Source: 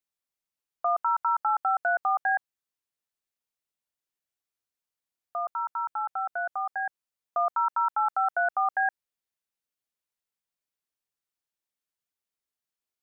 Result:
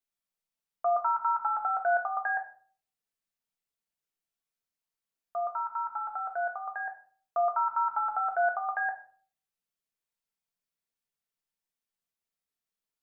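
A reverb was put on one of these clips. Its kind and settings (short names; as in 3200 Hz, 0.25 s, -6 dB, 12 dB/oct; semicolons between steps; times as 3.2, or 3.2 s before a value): shoebox room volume 430 m³, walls furnished, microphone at 1.6 m; gain -3.5 dB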